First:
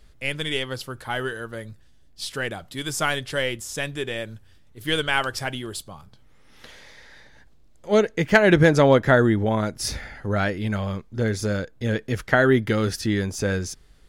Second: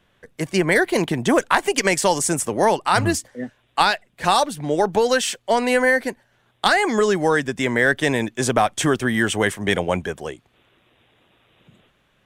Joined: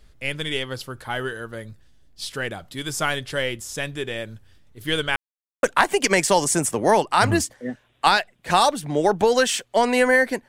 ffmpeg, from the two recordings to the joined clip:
ffmpeg -i cue0.wav -i cue1.wav -filter_complex "[0:a]apad=whole_dur=10.48,atrim=end=10.48,asplit=2[link_01][link_02];[link_01]atrim=end=5.16,asetpts=PTS-STARTPTS,afade=type=out:start_time=5.156:duration=0.004:curve=hsin[link_03];[link_02]atrim=start=5.16:end=5.63,asetpts=PTS-STARTPTS,volume=0[link_04];[1:a]atrim=start=1.37:end=6.22,asetpts=PTS-STARTPTS,afade=type=in:duration=0.004:curve=hsin[link_05];[link_03][link_04][link_05]concat=n=3:v=0:a=1" out.wav

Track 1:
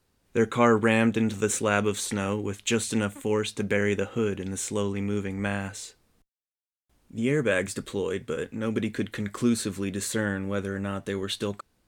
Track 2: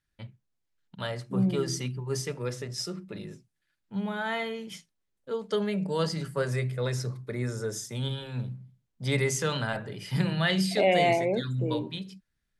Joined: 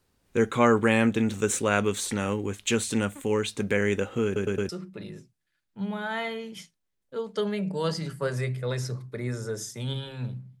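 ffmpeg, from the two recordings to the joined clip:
ffmpeg -i cue0.wav -i cue1.wav -filter_complex "[0:a]apad=whole_dur=10.6,atrim=end=10.6,asplit=4[link_01][link_02][link_03][link_04];[link_01]atrim=end=4.362[link_05];[link_02]atrim=start=4.248:end=4.362[link_06];[link_03]atrim=start=4.248:end=4.362[link_07];[link_04]atrim=start=4.248:end=4.362[link_08];[1:a]atrim=start=2.838:end=8.75[link_09];[link_05][link_06]acrossfade=duration=0.004:curve1=hsin:curve2=hsin[link_10];[link_10][link_07]acrossfade=duration=0.004:curve1=hsin:curve2=hsin[link_11];[link_11][link_08]acrossfade=duration=0.004:curve1=hsin:curve2=hsin[link_12];[link_12][link_09]acrossfade=duration=0.004:curve1=hsin:curve2=hsin" out.wav

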